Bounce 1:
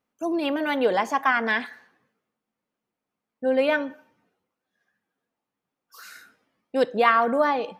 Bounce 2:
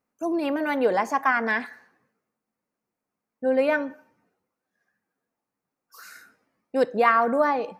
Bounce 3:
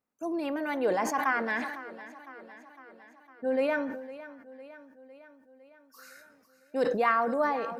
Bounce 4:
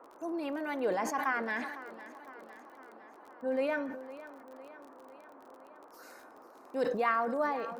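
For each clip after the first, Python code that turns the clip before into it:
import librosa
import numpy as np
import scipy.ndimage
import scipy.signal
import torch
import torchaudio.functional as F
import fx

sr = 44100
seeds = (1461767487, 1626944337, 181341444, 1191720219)

y1 = fx.peak_eq(x, sr, hz=3300.0, db=-10.5, octaves=0.51)
y2 = fx.echo_feedback(y1, sr, ms=506, feedback_pct=60, wet_db=-16.0)
y2 = fx.sustainer(y2, sr, db_per_s=49.0)
y2 = F.gain(torch.from_numpy(y2), -6.5).numpy()
y3 = fx.dmg_noise_band(y2, sr, seeds[0], low_hz=260.0, high_hz=1200.0, level_db=-51.0)
y3 = fx.dmg_crackle(y3, sr, seeds[1], per_s=34.0, level_db=-42.0)
y3 = F.gain(torch.from_numpy(y3), -4.0).numpy()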